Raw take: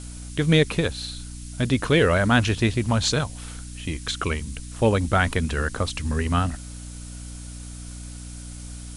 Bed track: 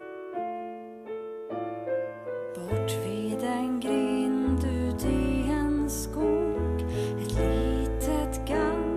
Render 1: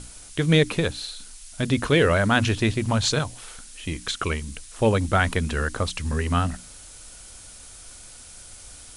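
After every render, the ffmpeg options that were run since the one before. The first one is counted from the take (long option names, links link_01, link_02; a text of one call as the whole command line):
ffmpeg -i in.wav -af "bandreject=frequency=60:width_type=h:width=6,bandreject=frequency=120:width_type=h:width=6,bandreject=frequency=180:width_type=h:width=6,bandreject=frequency=240:width_type=h:width=6,bandreject=frequency=300:width_type=h:width=6" out.wav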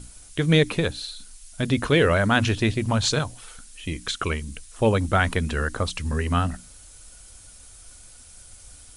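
ffmpeg -i in.wav -af "afftdn=noise_reduction=6:noise_floor=-45" out.wav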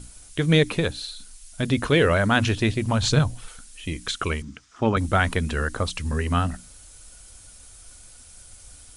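ffmpeg -i in.wav -filter_complex "[0:a]asettb=1/sr,asplit=3[link_01][link_02][link_03];[link_01]atrim=end=3.014[link_04];[link_02]atrim=start=3.01:end=3.48,asetpts=PTS-STARTPTS,afade=type=in:duration=0.004:curve=qsin,afade=type=out:start_time=0.466:duration=0.004:curve=qsin,bass=frequency=250:gain=9,treble=frequency=4000:gain=-2[link_05];[link_03]atrim=start=3.476[link_06];[link_04][link_05]acrossfade=duration=0.004:curve1=hsin:curve2=qsin[link_07];[link_07][link_06]acrossfade=duration=0.004:curve1=qsin:curve2=hsin,asettb=1/sr,asplit=3[link_08][link_09][link_10];[link_08]atrim=end=4.424[link_11];[link_09]atrim=start=4.42:end=4.97,asetpts=PTS-STARTPTS,afade=type=in:duration=0.004:curve=qsin,afade=type=out:start_time=0.546:duration=0.004:curve=qsin,highpass=110,equalizer=frequency=270:width_type=q:width=4:gain=4,equalizer=frequency=510:width_type=q:width=4:gain=-9,equalizer=frequency=1300:width_type=q:width=4:gain=8,equalizer=frequency=2700:width_type=q:width=4:gain=-5,equalizer=frequency=4100:width_type=q:width=4:gain=-8,lowpass=frequency=5600:width=0.5412,lowpass=frequency=5600:width=1.3066[link_12];[link_10]atrim=start=4.966[link_13];[link_11][link_12]acrossfade=duration=0.004:curve1=hsin:curve2=qsin[link_14];[link_14][link_13]acrossfade=duration=0.004:curve1=qsin:curve2=hsin" out.wav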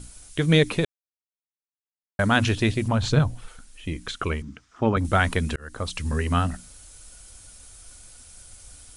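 ffmpeg -i in.wav -filter_complex "[0:a]asettb=1/sr,asplit=3[link_01][link_02][link_03];[link_01]atrim=end=2.884[link_04];[link_02]atrim=start=2.88:end=5.05,asetpts=PTS-STARTPTS,afade=type=in:duration=0.004:curve=qsin,afade=type=out:start_time=2.166:duration=0.004:curve=qsin,highshelf=frequency=3000:gain=-9[link_05];[link_03]atrim=start=5.046[link_06];[link_04][link_05]acrossfade=duration=0.004:curve1=hsin:curve2=qsin[link_07];[link_07][link_06]acrossfade=duration=0.004:curve1=qsin:curve2=hsin,asplit=4[link_08][link_09][link_10][link_11];[link_08]atrim=end=0.85,asetpts=PTS-STARTPTS,afade=type=out:start_time=0.846:duration=0.004:curve=hsin[link_12];[link_09]atrim=start=0.85:end=2.19,asetpts=PTS-STARTPTS,volume=0[link_13];[link_10]atrim=start=2.19:end=5.56,asetpts=PTS-STARTPTS,afade=type=in:duration=0.004:curve=hsin,afade=type=out:start_time=3.366:duration=0.004:curve=hsin[link_14];[link_11]atrim=start=5.56,asetpts=PTS-STARTPTS,afade=type=in:duration=0.44[link_15];[link_12][link_13][link_14][link_15]concat=n=4:v=0:a=1" out.wav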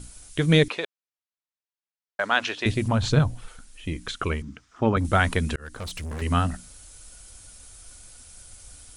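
ffmpeg -i in.wav -filter_complex "[0:a]asettb=1/sr,asplit=3[link_01][link_02][link_03];[link_01]atrim=end=0.684[link_04];[link_02]atrim=start=0.68:end=2.66,asetpts=PTS-STARTPTS,afade=type=in:duration=0.004:curve=qsin,afade=type=out:start_time=1.976:duration=0.004:curve=qsin,highpass=560,lowpass=5200[link_05];[link_03]atrim=start=2.656[link_06];[link_04][link_05]acrossfade=duration=0.004:curve1=hsin:curve2=qsin[link_07];[link_07][link_06]acrossfade=duration=0.004:curve1=qsin:curve2=hsin,asettb=1/sr,asplit=3[link_08][link_09][link_10];[link_08]atrim=end=5.654[link_11];[link_09]atrim=start=5.65:end=6.22,asetpts=PTS-STARTPTS,afade=type=in:duration=0.004:curve=qsin,afade=type=out:start_time=0.566:duration=0.004:curve=qsin,volume=31dB,asoftclip=hard,volume=-31dB[link_12];[link_10]atrim=start=6.216[link_13];[link_11][link_12]acrossfade=duration=0.004:curve1=hsin:curve2=qsin[link_14];[link_14][link_13]acrossfade=duration=0.004:curve1=qsin:curve2=hsin" out.wav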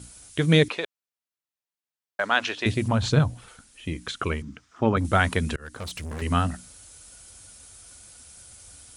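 ffmpeg -i in.wav -af "highpass=67" out.wav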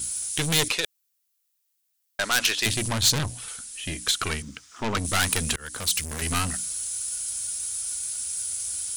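ffmpeg -i in.wav -af "aeval=exprs='(tanh(17.8*val(0)+0.45)-tanh(0.45))/17.8':channel_layout=same,crystalizer=i=7.5:c=0" out.wav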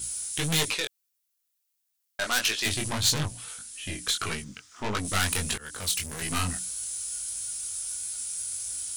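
ffmpeg -i in.wav -af "flanger=delay=18:depth=5.5:speed=1.6" out.wav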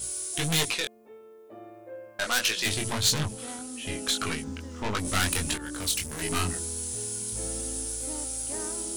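ffmpeg -i in.wav -i bed.wav -filter_complex "[1:a]volume=-12.5dB[link_01];[0:a][link_01]amix=inputs=2:normalize=0" out.wav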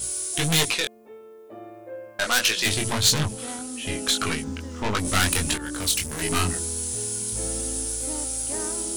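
ffmpeg -i in.wav -af "volume=4.5dB" out.wav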